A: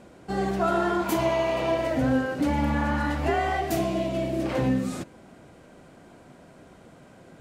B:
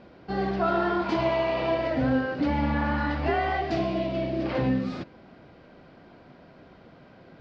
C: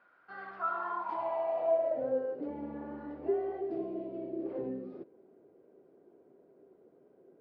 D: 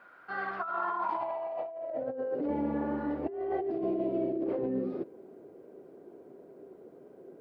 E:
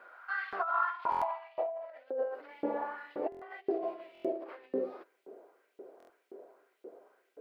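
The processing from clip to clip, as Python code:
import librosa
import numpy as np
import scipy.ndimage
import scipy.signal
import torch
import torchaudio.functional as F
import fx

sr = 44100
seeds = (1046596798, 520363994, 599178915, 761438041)

y1 = scipy.signal.sosfilt(scipy.signal.ellip(4, 1.0, 80, 4900.0, 'lowpass', fs=sr, output='sos'), x)
y2 = fx.filter_sweep_bandpass(y1, sr, from_hz=1400.0, to_hz=400.0, start_s=0.42, end_s=2.6, q=5.5)
y3 = fx.over_compress(y2, sr, threshold_db=-39.0, ratio=-1.0)
y3 = y3 * librosa.db_to_amplitude(6.0)
y4 = fx.filter_lfo_highpass(y3, sr, shape='saw_up', hz=1.9, low_hz=370.0, high_hz=3200.0, q=1.7)
y4 = fx.buffer_glitch(y4, sr, at_s=(1.1, 3.3, 4.13, 5.98), block=1024, repeats=4)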